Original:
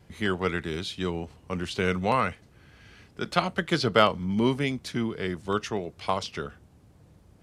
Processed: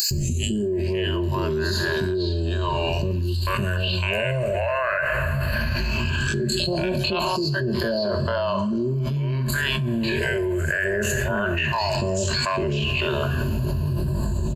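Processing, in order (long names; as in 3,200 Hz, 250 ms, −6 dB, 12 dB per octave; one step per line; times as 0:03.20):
dynamic equaliser 260 Hz, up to −6 dB, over −42 dBFS, Q 1.8
all-pass phaser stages 6, 0.33 Hz, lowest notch 250–2,500 Hz
tempo change 0.51×
EQ curve with evenly spaced ripples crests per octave 1.4, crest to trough 17 dB
three-band delay without the direct sound highs, lows, mids 110/550 ms, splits 590/4,400 Hz
upward compression, threshold −38 dBFS
coupled-rooms reverb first 0.51 s, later 3.6 s, from −17 dB, DRR 9.5 dB
envelope flattener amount 100%
level −5.5 dB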